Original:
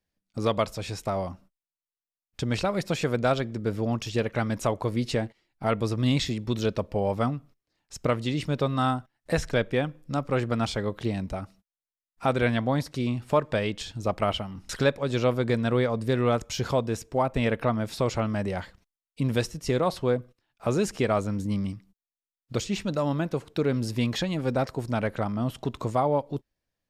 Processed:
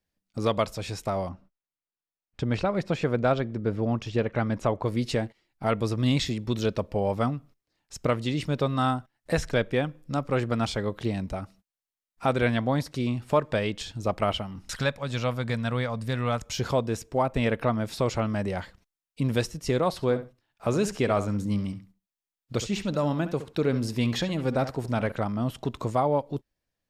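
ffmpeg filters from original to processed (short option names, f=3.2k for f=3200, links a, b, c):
-filter_complex "[0:a]asettb=1/sr,asplit=3[a][b][c];[a]atrim=end=1.294[d];[b]atrim=start=1.29:end=4.86,asetpts=PTS-STARTPTS,afade=t=in:d=0.004:c=qsin,afade=t=out:st=3.566:d=0.004:c=qsin,aemphasis=mode=reproduction:type=75fm[e];[c]atrim=start=4.856[f];[d][e]acrossfade=d=0.004:c1=hsin:c2=qsin[g];[g][f]acrossfade=d=0.004:c1=qsin:c2=hsin,asettb=1/sr,asplit=3[h][i][j];[h]atrim=end=14.714[k];[i]atrim=start=14.71:end=16.46,asetpts=PTS-STARTPTS,afade=t=in:d=0.004:c=qsin,afade=t=out:st=1.746:d=0.004:c=qsin,equalizer=f=370:w=1.5:g=-12[l];[j]atrim=start=16.456[m];[k][l]acrossfade=d=0.004:c1=hsin:c2=qsin[n];[n][m]acrossfade=d=0.004:c1=qsin:c2=hsin,asettb=1/sr,asplit=3[o][p][q];[o]atrim=end=19.924[r];[p]atrim=start=19.92:end=25.12,asetpts=PTS-STARTPTS,afade=t=in:d=0.004:c=qsin,afade=t=out:st=5.196:d=0.004:c=qsin,asplit=2[s][t];[t]adelay=68,lowpass=f=4.5k:p=1,volume=-12dB,asplit=2[u][v];[v]adelay=68,lowpass=f=4.5k:p=1,volume=0.17[w];[s][u][w]amix=inputs=3:normalize=0,atrim=end_sample=229320[x];[q]atrim=start=25.116[y];[r][x]acrossfade=d=0.004:c1=hsin:c2=qsin[z];[z][y]acrossfade=d=0.004:c1=qsin:c2=hsin"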